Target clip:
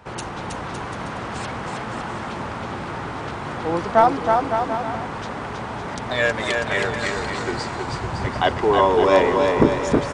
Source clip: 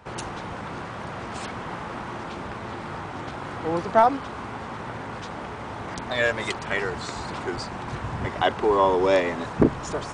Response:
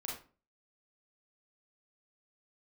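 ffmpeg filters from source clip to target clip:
-af "aecho=1:1:320|560|740|875|976.2:0.631|0.398|0.251|0.158|0.1,volume=1.33"

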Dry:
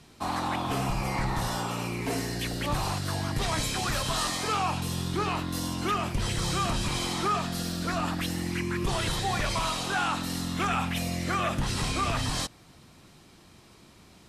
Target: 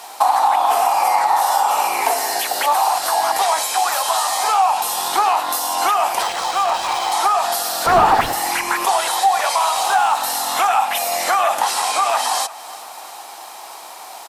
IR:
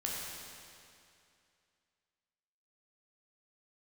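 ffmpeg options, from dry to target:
-filter_complex "[0:a]highpass=f=800:t=q:w=4.8,aemphasis=mode=production:type=riaa,asplit=2[s0][s1];[s1]alimiter=limit=0.133:level=0:latency=1:release=246,volume=1.26[s2];[s0][s2]amix=inputs=2:normalize=0,acompressor=threshold=0.0708:ratio=6,asettb=1/sr,asplit=3[s3][s4][s5];[s3]atrim=end=7.864[s6];[s4]atrim=start=7.86:end=8.33,asetpts=PTS-STARTPTS,afade=t=in:d=0.004:c=qsin,afade=t=out:st=0.466:d=0.004:c=qsin,asplit=2[s7][s8];[s8]highpass=f=720:p=1,volume=17.8,asoftclip=type=tanh:threshold=0.2[s9];[s7][s9]amix=inputs=2:normalize=0,lowpass=f=1400:p=1,volume=0.501[s10];[s5]atrim=start=8.326[s11];[s6][s10]acrossfade=d=0.004:c1=hsin:c2=qsin[s12];[s12][s11]acrossfade=d=0.004:c1=qsin:c2=hsin,asettb=1/sr,asplit=3[s13][s14][s15];[s13]atrim=end=9.764[s16];[s14]atrim=start=9.76:end=10.38,asetpts=PTS-STARTPTS,afade=t=in:d=0.004:c=qsin,afade=t=out:st=0.616:d=0.004:c=qsin,acrusher=bits=6:mode=log:mix=0:aa=0.000001[s17];[s15]atrim=start=10.376[s18];[s16][s17]acrossfade=d=0.004:c1=hsin:c2=qsin[s19];[s19][s18]acrossfade=d=0.004:c1=qsin:c2=hsin,tiltshelf=f=1300:g=6.5,asettb=1/sr,asplit=3[s20][s21][s22];[s20]atrim=end=6.224[s23];[s21]atrim=start=6.22:end=7.12,asetpts=PTS-STARTPTS,afade=t=in:d=0.004:c=qsin,afade=t=out:st=0.896:d=0.004:c=qsin,adynamicsmooth=sensitivity=6.5:basefreq=1900[s24];[s22]atrim=start=7.116[s25];[s23][s24]acrossfade=d=0.004:c1=hsin:c2=qsin[s26];[s26][s25]acrossfade=d=0.004:c1=qsin:c2=hsin,asplit=2[s27][s28];[s28]aecho=0:1:353|706|1059|1412:0.1|0.055|0.0303|0.0166[s29];[s27][s29]amix=inputs=2:normalize=0,volume=2.66"

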